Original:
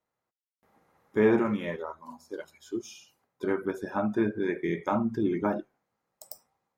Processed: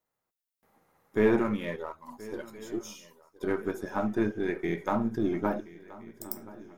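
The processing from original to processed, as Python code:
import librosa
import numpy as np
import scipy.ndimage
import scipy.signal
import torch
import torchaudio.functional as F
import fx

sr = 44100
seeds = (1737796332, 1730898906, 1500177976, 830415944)

p1 = np.where(x < 0.0, 10.0 ** (-3.0 / 20.0) * x, x)
p2 = fx.high_shelf(p1, sr, hz=9400.0, db=10.0)
y = p2 + fx.echo_swing(p2, sr, ms=1368, ratio=3, feedback_pct=51, wet_db=-19.5, dry=0)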